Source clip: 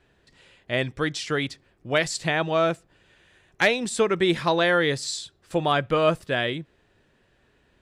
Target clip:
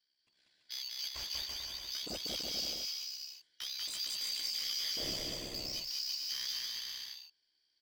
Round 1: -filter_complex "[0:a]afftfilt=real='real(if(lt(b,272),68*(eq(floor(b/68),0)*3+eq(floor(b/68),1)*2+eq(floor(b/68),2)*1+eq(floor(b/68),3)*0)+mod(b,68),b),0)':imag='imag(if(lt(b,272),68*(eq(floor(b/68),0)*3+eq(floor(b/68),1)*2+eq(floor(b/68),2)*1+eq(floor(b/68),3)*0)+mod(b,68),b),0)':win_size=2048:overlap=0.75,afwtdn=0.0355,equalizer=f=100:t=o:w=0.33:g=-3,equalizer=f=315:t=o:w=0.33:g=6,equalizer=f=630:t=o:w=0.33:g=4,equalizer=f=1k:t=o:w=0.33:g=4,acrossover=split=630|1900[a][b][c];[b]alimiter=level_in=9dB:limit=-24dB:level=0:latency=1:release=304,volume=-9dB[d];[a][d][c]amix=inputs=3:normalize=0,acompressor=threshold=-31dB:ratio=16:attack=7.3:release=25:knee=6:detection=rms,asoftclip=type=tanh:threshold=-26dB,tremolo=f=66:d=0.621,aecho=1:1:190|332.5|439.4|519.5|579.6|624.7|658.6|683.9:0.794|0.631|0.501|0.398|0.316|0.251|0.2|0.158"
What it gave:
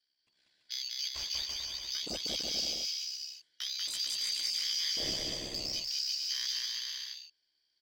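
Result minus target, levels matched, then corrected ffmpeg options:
soft clip: distortion -9 dB
-filter_complex "[0:a]afftfilt=real='real(if(lt(b,272),68*(eq(floor(b/68),0)*3+eq(floor(b/68),1)*2+eq(floor(b/68),2)*1+eq(floor(b/68),3)*0)+mod(b,68),b),0)':imag='imag(if(lt(b,272),68*(eq(floor(b/68),0)*3+eq(floor(b/68),1)*2+eq(floor(b/68),2)*1+eq(floor(b/68),3)*0)+mod(b,68),b),0)':win_size=2048:overlap=0.75,afwtdn=0.0355,equalizer=f=100:t=o:w=0.33:g=-3,equalizer=f=315:t=o:w=0.33:g=6,equalizer=f=630:t=o:w=0.33:g=4,equalizer=f=1k:t=o:w=0.33:g=4,acrossover=split=630|1900[a][b][c];[b]alimiter=level_in=9dB:limit=-24dB:level=0:latency=1:release=304,volume=-9dB[d];[a][d][c]amix=inputs=3:normalize=0,acompressor=threshold=-31dB:ratio=16:attack=7.3:release=25:knee=6:detection=rms,asoftclip=type=tanh:threshold=-34.5dB,tremolo=f=66:d=0.621,aecho=1:1:190|332.5|439.4|519.5|579.6|624.7|658.6|683.9:0.794|0.631|0.501|0.398|0.316|0.251|0.2|0.158"

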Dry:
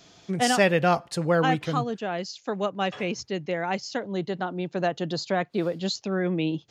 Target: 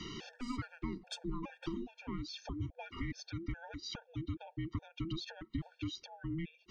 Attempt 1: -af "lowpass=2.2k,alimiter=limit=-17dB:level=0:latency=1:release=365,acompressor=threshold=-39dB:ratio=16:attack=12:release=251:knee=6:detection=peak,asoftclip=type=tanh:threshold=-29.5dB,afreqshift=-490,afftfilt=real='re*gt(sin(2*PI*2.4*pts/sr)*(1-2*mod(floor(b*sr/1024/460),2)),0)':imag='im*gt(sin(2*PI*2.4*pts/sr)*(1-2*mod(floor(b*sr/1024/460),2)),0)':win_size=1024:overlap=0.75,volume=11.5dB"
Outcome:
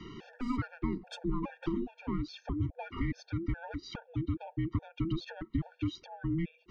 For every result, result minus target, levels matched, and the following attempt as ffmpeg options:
4000 Hz band -9.0 dB; compressor: peak gain reduction -7 dB
-af "lowpass=4.9k,alimiter=limit=-17dB:level=0:latency=1:release=365,acompressor=threshold=-39dB:ratio=16:attack=12:release=251:knee=6:detection=peak,asoftclip=type=tanh:threshold=-29.5dB,afreqshift=-490,afftfilt=real='re*gt(sin(2*PI*2.4*pts/sr)*(1-2*mod(floor(b*sr/1024/460),2)),0)':imag='im*gt(sin(2*PI*2.4*pts/sr)*(1-2*mod(floor(b*sr/1024/460),2)),0)':win_size=1024:overlap=0.75,volume=11.5dB"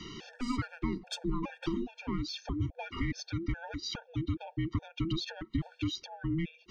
compressor: peak gain reduction -7 dB
-af "lowpass=4.9k,alimiter=limit=-17dB:level=0:latency=1:release=365,acompressor=threshold=-46.5dB:ratio=16:attack=12:release=251:knee=6:detection=peak,asoftclip=type=tanh:threshold=-29.5dB,afreqshift=-490,afftfilt=real='re*gt(sin(2*PI*2.4*pts/sr)*(1-2*mod(floor(b*sr/1024/460),2)),0)':imag='im*gt(sin(2*PI*2.4*pts/sr)*(1-2*mod(floor(b*sr/1024/460),2)),0)':win_size=1024:overlap=0.75,volume=11.5dB"

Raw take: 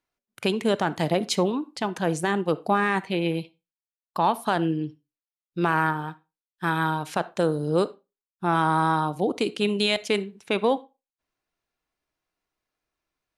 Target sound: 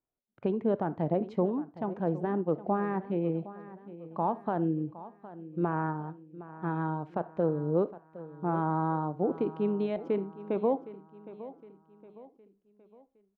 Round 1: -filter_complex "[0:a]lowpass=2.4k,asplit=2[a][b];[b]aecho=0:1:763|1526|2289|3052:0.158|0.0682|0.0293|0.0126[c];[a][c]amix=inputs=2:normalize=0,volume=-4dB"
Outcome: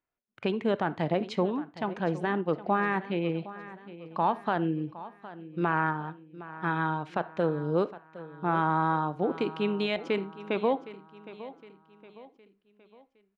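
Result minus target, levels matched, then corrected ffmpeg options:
2000 Hz band +10.5 dB
-filter_complex "[0:a]lowpass=780,asplit=2[a][b];[b]aecho=0:1:763|1526|2289|3052:0.158|0.0682|0.0293|0.0126[c];[a][c]amix=inputs=2:normalize=0,volume=-4dB"

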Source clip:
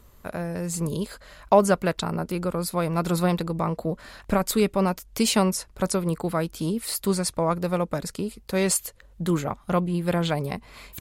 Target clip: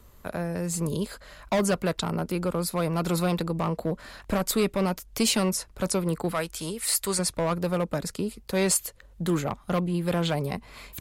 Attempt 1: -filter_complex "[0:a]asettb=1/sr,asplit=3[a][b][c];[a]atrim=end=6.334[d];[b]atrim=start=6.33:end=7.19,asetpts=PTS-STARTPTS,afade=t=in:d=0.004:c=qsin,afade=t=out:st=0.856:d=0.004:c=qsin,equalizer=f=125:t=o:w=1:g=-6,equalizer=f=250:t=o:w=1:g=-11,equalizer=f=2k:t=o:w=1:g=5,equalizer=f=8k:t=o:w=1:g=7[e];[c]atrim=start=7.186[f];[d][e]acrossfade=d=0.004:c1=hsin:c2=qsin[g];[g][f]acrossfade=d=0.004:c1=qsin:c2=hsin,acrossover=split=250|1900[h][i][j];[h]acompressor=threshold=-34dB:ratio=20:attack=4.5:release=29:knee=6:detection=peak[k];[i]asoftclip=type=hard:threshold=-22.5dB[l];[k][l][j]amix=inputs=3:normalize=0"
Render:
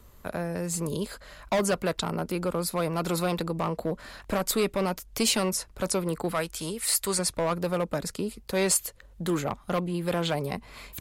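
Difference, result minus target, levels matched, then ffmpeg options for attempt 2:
compressor: peak gain reduction +7.5 dB
-filter_complex "[0:a]asettb=1/sr,asplit=3[a][b][c];[a]atrim=end=6.334[d];[b]atrim=start=6.33:end=7.19,asetpts=PTS-STARTPTS,afade=t=in:d=0.004:c=qsin,afade=t=out:st=0.856:d=0.004:c=qsin,equalizer=f=125:t=o:w=1:g=-6,equalizer=f=250:t=o:w=1:g=-11,equalizer=f=2k:t=o:w=1:g=5,equalizer=f=8k:t=o:w=1:g=7[e];[c]atrim=start=7.186[f];[d][e]acrossfade=d=0.004:c1=hsin:c2=qsin[g];[g][f]acrossfade=d=0.004:c1=qsin:c2=hsin,acrossover=split=250|1900[h][i][j];[h]acompressor=threshold=-26dB:ratio=20:attack=4.5:release=29:knee=6:detection=peak[k];[i]asoftclip=type=hard:threshold=-22.5dB[l];[k][l][j]amix=inputs=3:normalize=0"

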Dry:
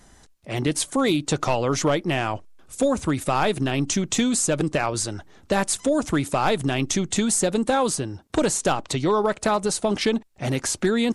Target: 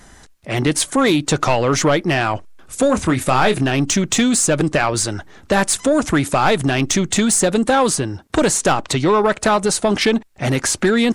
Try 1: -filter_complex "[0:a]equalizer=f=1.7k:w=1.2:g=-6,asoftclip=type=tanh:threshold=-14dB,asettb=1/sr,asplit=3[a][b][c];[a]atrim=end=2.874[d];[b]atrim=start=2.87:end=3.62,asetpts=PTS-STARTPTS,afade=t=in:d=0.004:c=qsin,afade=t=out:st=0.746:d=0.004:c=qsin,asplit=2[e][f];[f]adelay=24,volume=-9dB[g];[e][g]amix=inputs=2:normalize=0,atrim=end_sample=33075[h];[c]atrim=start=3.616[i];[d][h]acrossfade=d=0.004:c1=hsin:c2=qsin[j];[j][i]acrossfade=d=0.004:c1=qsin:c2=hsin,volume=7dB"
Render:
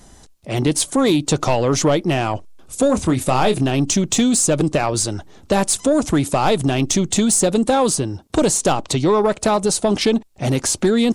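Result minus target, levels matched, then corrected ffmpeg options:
2000 Hz band -6.5 dB
-filter_complex "[0:a]equalizer=f=1.7k:w=1.2:g=4,asoftclip=type=tanh:threshold=-14dB,asettb=1/sr,asplit=3[a][b][c];[a]atrim=end=2.874[d];[b]atrim=start=2.87:end=3.62,asetpts=PTS-STARTPTS,afade=t=in:d=0.004:c=qsin,afade=t=out:st=0.746:d=0.004:c=qsin,asplit=2[e][f];[f]adelay=24,volume=-9dB[g];[e][g]amix=inputs=2:normalize=0,atrim=end_sample=33075[h];[c]atrim=start=3.616[i];[d][h]acrossfade=d=0.004:c1=hsin:c2=qsin[j];[j][i]acrossfade=d=0.004:c1=qsin:c2=hsin,volume=7dB"

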